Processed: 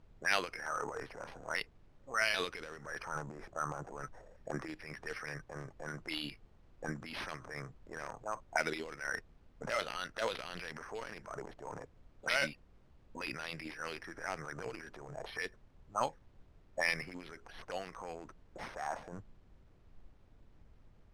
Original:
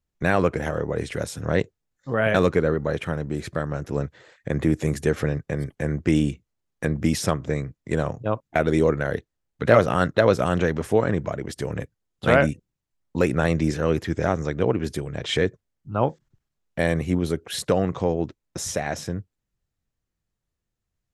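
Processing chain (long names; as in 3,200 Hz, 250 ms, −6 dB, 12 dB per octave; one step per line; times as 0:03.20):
adaptive Wiener filter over 9 samples
parametric band 10,000 Hz +12 dB 0.56 octaves
envelope filter 430–3,100 Hz, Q 3.3, up, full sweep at −16.5 dBFS
transient designer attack −5 dB, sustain +10 dB
background noise brown −57 dBFS
noise reduction from a noise print of the clip's start 6 dB
bad sample-rate conversion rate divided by 6×, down none, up hold
high-frequency loss of the air 73 metres
level +4 dB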